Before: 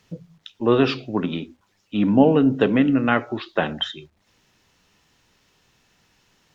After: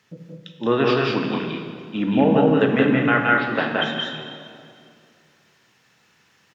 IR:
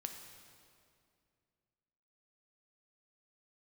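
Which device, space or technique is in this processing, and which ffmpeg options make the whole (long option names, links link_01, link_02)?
stadium PA: -filter_complex "[0:a]highpass=130,equalizer=frequency=1700:width_type=o:width=1.1:gain=6,aecho=1:1:172|204.1:0.794|0.631[link_01];[1:a]atrim=start_sample=2205[link_02];[link_01][link_02]afir=irnorm=-1:irlink=0"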